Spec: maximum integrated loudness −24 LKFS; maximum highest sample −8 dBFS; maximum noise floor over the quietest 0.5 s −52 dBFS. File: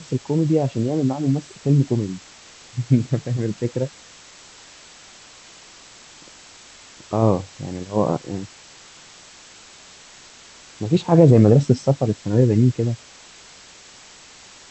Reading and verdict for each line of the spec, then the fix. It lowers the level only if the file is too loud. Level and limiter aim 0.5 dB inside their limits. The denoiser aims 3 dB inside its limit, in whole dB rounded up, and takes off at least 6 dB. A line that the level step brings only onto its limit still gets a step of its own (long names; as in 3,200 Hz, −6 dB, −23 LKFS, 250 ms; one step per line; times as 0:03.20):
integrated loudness −20.0 LKFS: out of spec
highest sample −3.0 dBFS: out of spec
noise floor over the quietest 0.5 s −45 dBFS: out of spec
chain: broadband denoise 6 dB, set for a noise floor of −45 dBFS
level −4.5 dB
brickwall limiter −8.5 dBFS